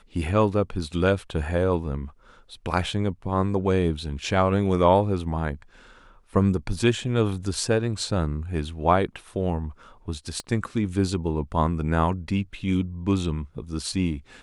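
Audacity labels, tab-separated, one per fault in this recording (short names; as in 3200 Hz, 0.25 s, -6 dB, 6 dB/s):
10.400000	10.400000	pop -18 dBFS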